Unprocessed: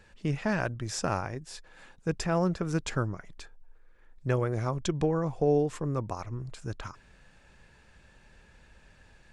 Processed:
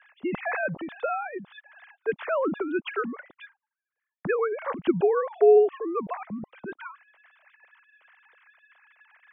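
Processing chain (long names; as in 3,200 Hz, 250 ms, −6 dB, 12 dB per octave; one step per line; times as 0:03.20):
three sine waves on the formant tracks
noise gate with hold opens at −60 dBFS
level +4 dB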